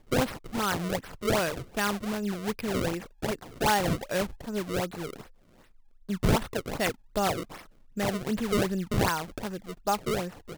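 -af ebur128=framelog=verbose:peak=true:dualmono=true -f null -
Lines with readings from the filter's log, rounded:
Integrated loudness:
  I:         -26.8 LUFS
  Threshold: -37.3 LUFS
Loudness range:
  LRA:         2.2 LU
  Threshold: -47.4 LUFS
  LRA low:   -28.6 LUFS
  LRA high:  -26.4 LUFS
True peak:
  Peak:       -9.8 dBFS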